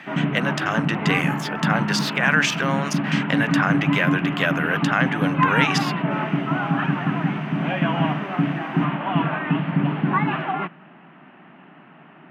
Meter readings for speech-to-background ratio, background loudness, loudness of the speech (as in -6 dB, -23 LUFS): -0.5 dB, -23.0 LUFS, -23.5 LUFS